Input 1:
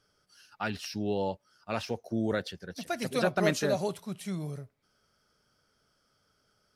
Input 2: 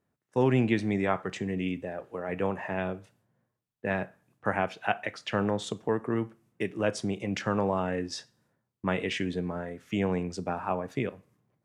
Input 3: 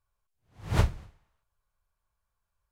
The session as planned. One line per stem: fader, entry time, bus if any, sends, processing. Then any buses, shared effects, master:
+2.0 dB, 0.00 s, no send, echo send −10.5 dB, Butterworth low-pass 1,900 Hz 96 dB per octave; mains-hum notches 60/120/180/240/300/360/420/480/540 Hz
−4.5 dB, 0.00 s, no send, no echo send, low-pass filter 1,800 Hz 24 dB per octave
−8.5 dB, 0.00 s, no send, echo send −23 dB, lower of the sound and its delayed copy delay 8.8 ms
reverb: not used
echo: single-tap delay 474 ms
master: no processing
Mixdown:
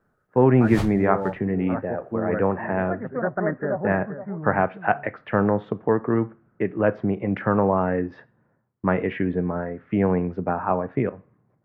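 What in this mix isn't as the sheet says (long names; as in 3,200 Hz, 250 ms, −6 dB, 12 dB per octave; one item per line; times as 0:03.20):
stem 1: missing mains-hum notches 60/120/180/240/300/360/420/480/540 Hz
stem 2 −4.5 dB → +7.5 dB
stem 3 −8.5 dB → −0.5 dB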